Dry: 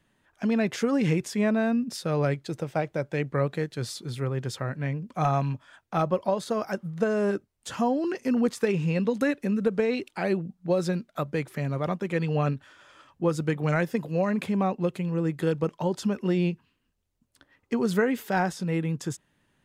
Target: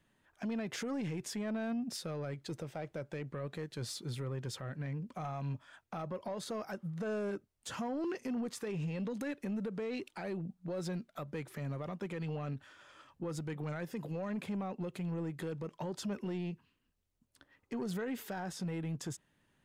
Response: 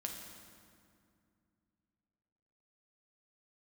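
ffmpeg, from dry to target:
-af "alimiter=limit=0.0631:level=0:latency=1:release=102,asoftclip=type=tanh:threshold=0.0501,volume=0.596"

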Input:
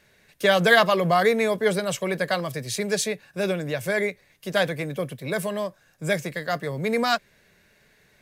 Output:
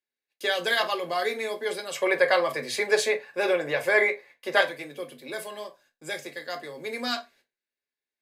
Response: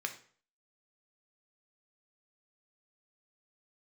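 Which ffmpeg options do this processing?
-filter_complex "[0:a]agate=range=0.0398:threshold=0.00251:ratio=16:detection=peak,asettb=1/sr,asplit=3[s0][s1][s2];[s0]atrim=end=1.954[s3];[s1]atrim=start=1.95:end=4.61,asetpts=PTS-STARTPTS,afade=t=in:d=0.004:c=qsin,afade=t=out:st=2.656:d=0.004:c=qsin,equalizer=f=125:t=o:w=1:g=9,equalizer=f=500:t=o:w=1:g=10,equalizer=f=1000:t=o:w=1:g=10,equalizer=f=2000:t=o:w=1:g=10[s4];[s2]atrim=start=4.606[s5];[s3][s4]acrossfade=d=0.004:c1=hsin:c2=qsin[s6];[s6][s5]acrossfade=d=0.004:c1=qsin:c2=hsin[s7];[1:a]atrim=start_sample=2205,asetrate=88200,aresample=44100[s8];[s7][s8]afir=irnorm=-1:irlink=0"

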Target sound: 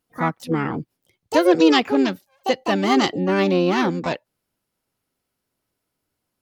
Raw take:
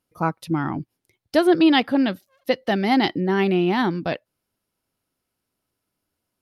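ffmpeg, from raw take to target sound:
-filter_complex "[0:a]asplit=2[s0][s1];[s1]asetrate=66075,aresample=44100,atempo=0.66742,volume=0.562[s2];[s0][s2]amix=inputs=2:normalize=0"

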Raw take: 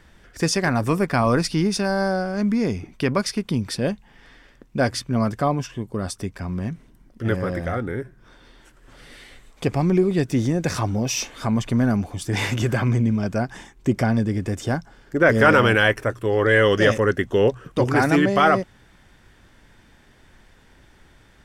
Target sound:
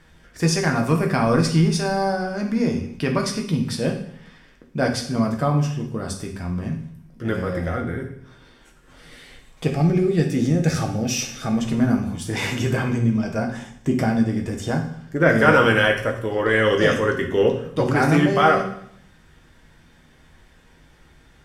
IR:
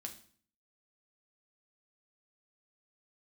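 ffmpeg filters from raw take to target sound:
-filter_complex "[0:a]asettb=1/sr,asplit=3[s0][s1][s2];[s0]atrim=end=9.674[s3];[s1]atrim=start=9.67:end=11.59,asetpts=PTS-STARTPTS,afade=t=in:d=0.004:c=qsin,afade=t=out:st=1.916:d=0.004:c=qsin,asuperstop=centerf=1000:order=8:qfactor=4.9[s4];[s2]atrim=start=11.586[s5];[s3][s4]acrossfade=d=0.004:c1=hsin:c2=qsin[s6];[s6][s5]acrossfade=d=0.004:c1=qsin:c2=hsin[s7];[1:a]atrim=start_sample=2205,asetrate=31752,aresample=44100[s8];[s7][s8]afir=irnorm=-1:irlink=0,volume=1.19"

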